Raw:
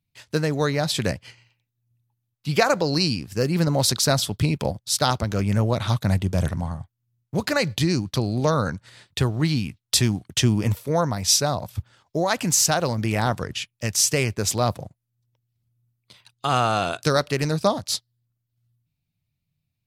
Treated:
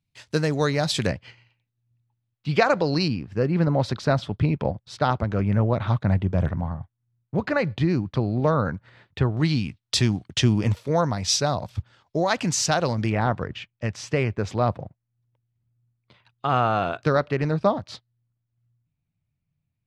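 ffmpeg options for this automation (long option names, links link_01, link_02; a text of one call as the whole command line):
ffmpeg -i in.wav -af "asetnsamples=nb_out_samples=441:pad=0,asendcmd='1.07 lowpass f 3500;3.08 lowpass f 2000;9.37 lowpass f 5100;13.1 lowpass f 2100',lowpass=8600" out.wav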